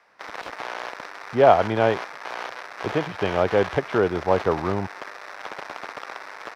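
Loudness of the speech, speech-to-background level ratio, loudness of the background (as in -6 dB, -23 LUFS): -22.5 LUFS, 12.0 dB, -34.5 LUFS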